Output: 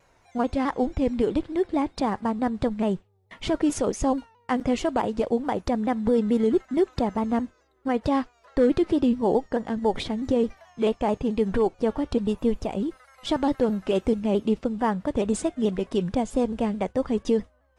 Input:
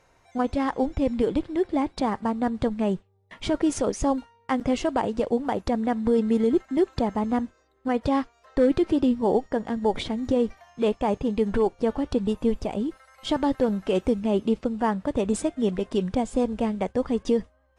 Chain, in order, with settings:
pitch modulation by a square or saw wave saw down 4.6 Hz, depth 100 cents

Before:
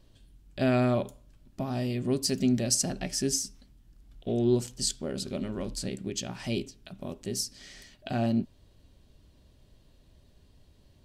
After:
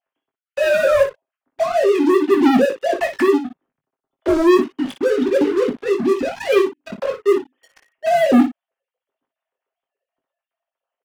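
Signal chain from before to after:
three sine waves on the formant tracks
low-pass filter 2,400 Hz 12 dB per octave
comb filter 7.5 ms, depth 52%
leveller curve on the samples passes 5
ambience of single reflections 20 ms −6 dB, 58 ms −10 dB

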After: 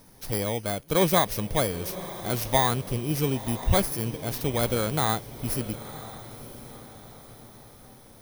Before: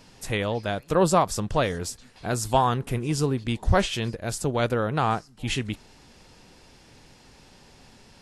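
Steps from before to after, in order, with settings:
samples in bit-reversed order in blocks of 16 samples
feedback delay with all-pass diffusion 986 ms, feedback 45%, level −14 dB
level −1.5 dB

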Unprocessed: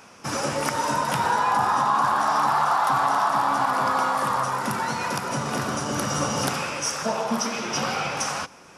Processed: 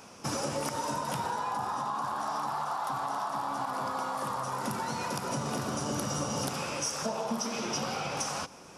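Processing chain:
downward compressor, threshold −28 dBFS, peak gain reduction 10.5 dB
parametric band 1,800 Hz −6.5 dB 1.4 octaves

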